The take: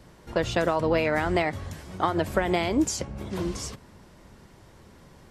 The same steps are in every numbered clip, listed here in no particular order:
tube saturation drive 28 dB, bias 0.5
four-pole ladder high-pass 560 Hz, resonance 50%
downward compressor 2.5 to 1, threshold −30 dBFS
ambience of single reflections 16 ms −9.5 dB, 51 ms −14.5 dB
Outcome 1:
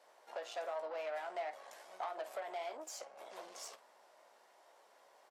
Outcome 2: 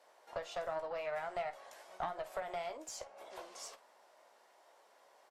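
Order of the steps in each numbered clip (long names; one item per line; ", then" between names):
ambience of single reflections, then downward compressor, then tube saturation, then four-pole ladder high-pass
downward compressor, then four-pole ladder high-pass, then tube saturation, then ambience of single reflections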